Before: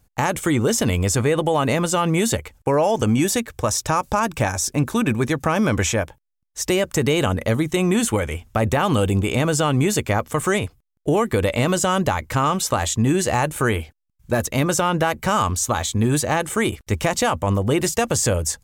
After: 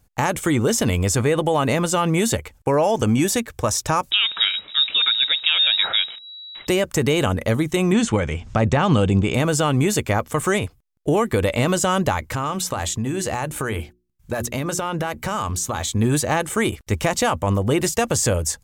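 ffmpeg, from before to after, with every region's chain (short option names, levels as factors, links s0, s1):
-filter_complex "[0:a]asettb=1/sr,asplit=3[s0][s1][s2];[s0]atrim=end=4.114[s3];[s1]atrim=start=4.11:end=6.67,asetpts=PTS-STARTPTS,afade=t=in:d=0.004:c=qsin,afade=t=out:st=2.556:d=0.004:c=qsin,aeval=exprs='val(0)+0.5*0.0251*sgn(val(0))':c=same,lowpass=f=3300:t=q:w=0.5098,lowpass=f=3300:t=q:w=0.6013,lowpass=f=3300:t=q:w=0.9,lowpass=f=3300:t=q:w=2.563,afreqshift=-3900[s4];[s2]atrim=start=6.666[s5];[s3][s4]acrossfade=d=0.004:c1=hsin:c2=qsin[s6];[s6][s5]acrossfade=d=0.004:c1=qsin:c2=hsin,asettb=1/sr,asplit=3[s7][s8][s9];[s7]atrim=end=7.924[s10];[s8]atrim=start=7.92:end=9.34,asetpts=PTS-STARTPTS,afade=t=in:d=0.004:c=qsin,afade=t=out:st=1.416:d=0.004:c=qsin,lowpass=f=7100:w=0.5412,lowpass=f=7100:w=1.3066,equalizer=f=160:w=2:g=6.5,acompressor=mode=upward:threshold=0.0891:ratio=2.5:attack=3.2:release=140:knee=2.83:detection=peak[s11];[s9]atrim=start=9.336[s12];[s10][s11]acrossfade=d=0.004:c1=hsin:c2=qsin[s13];[s13][s12]acrossfade=d=0.004:c1=qsin:c2=hsin,asettb=1/sr,asplit=3[s14][s15][s16];[s14]atrim=end=12.324[s17];[s15]atrim=start=12.32:end=15.88,asetpts=PTS-STARTPTS,afade=t=in:d=0.004:c=qsin,afade=t=out:st=3.556:d=0.004:c=qsin,bandreject=f=60:t=h:w=6,bandreject=f=120:t=h:w=6,bandreject=f=180:t=h:w=6,bandreject=f=240:t=h:w=6,bandreject=f=300:t=h:w=6,bandreject=f=360:t=h:w=6,acompressor=threshold=0.1:ratio=5:attack=3.2:release=140:knee=1:detection=peak[s18];[s16]atrim=start=15.876[s19];[s17][s18]acrossfade=d=0.004:c1=hsin:c2=qsin[s20];[s20][s19]acrossfade=d=0.004:c1=qsin:c2=hsin"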